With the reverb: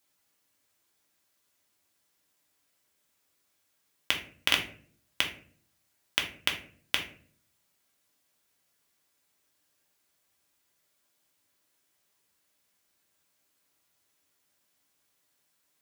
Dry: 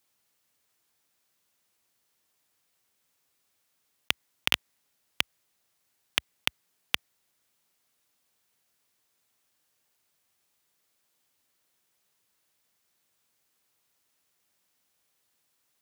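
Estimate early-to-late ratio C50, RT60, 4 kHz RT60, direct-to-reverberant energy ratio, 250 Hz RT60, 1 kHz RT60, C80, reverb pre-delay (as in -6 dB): 9.5 dB, 0.50 s, 0.30 s, 1.5 dB, 0.75 s, 0.40 s, 14.0 dB, 3 ms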